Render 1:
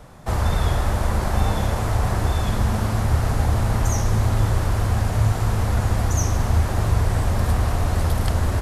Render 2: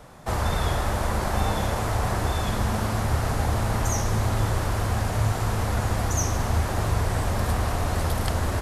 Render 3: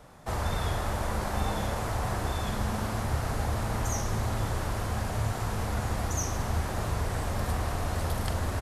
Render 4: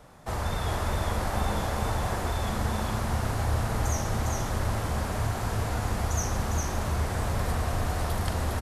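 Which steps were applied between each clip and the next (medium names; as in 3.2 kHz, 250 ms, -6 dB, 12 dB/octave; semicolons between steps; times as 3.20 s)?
bass shelf 180 Hz -6.5 dB
doubling 43 ms -11.5 dB; trim -5.5 dB
delay 406 ms -3.5 dB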